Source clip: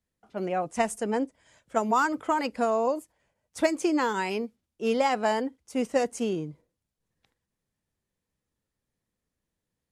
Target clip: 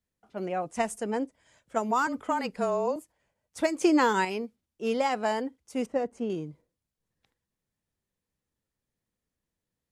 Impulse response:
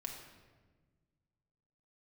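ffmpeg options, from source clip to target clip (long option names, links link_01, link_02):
-filter_complex "[0:a]asettb=1/sr,asplit=3[link_01][link_02][link_03];[link_01]atrim=end=2.074[link_04];[link_02]atrim=start=2.07:end=2.96,asetpts=PTS-STARTPTS,afade=type=in:duration=0.004:curve=qsin,afade=type=out:start_time=0.886:duration=0.004:curve=qsin,afreqshift=-27[link_05];[link_03]atrim=start=2.956[link_06];[link_04][link_05]acrossfade=duration=0.004:curve1=hsin:curve2=qsin[link_07];[link_07][link_06]acrossfade=duration=0.004:curve1=qsin:curve2=hsin,asettb=1/sr,asplit=3[link_08][link_09][link_10];[link_08]atrim=end=3.814[link_11];[link_09]atrim=start=3.81:end=4.25,asetpts=PTS-STARTPTS,afade=type=in:duration=0.004:curve=qsin,afade=type=out:start_time=0.436:duration=0.004:curve=qsin,acontrast=48[link_12];[link_10]atrim=start=4.246[link_13];[link_11][link_12]acrossfade=duration=0.004:curve1=hsin:curve2=qsin[link_14];[link_14][link_13]acrossfade=duration=0.004:curve1=qsin:curve2=hsin,asettb=1/sr,asplit=3[link_15][link_16][link_17];[link_15]atrim=end=5.864[link_18];[link_16]atrim=start=5.86:end=6.3,asetpts=PTS-STARTPTS,afade=type=in:duration=0.004:curve=qsin,afade=type=out:start_time=0.436:duration=0.004:curve=qsin,lowpass=frequency=1000:poles=1[link_19];[link_17]atrim=start=6.296[link_20];[link_18][link_19]acrossfade=duration=0.004:curve1=hsin:curve2=qsin[link_21];[link_21][link_20]acrossfade=duration=0.004:curve1=qsin:curve2=hsin,volume=-2.5dB"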